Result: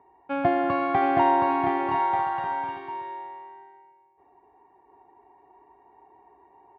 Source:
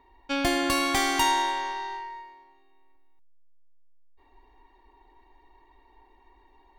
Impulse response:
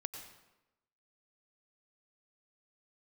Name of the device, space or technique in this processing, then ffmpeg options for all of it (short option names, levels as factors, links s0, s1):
bass cabinet: -af "highpass=f=89:w=0.5412,highpass=f=89:w=1.3066,equalizer=f=110:t=q:w=4:g=6,equalizer=f=170:t=q:w=4:g=9,equalizer=f=240:t=q:w=4:g=-5,equalizer=f=420:t=q:w=4:g=5,equalizer=f=730:t=q:w=4:g=9,equalizer=f=1900:t=q:w=4:g=-5,lowpass=f=2000:w=0.5412,lowpass=f=2000:w=1.3066,aecho=1:1:720|1188|1492|1690|1818:0.631|0.398|0.251|0.158|0.1"